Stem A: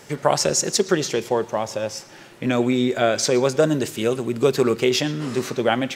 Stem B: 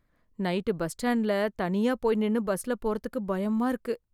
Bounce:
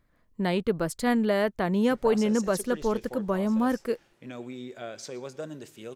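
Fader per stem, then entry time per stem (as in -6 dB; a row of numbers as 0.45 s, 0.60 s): -19.5 dB, +2.0 dB; 1.80 s, 0.00 s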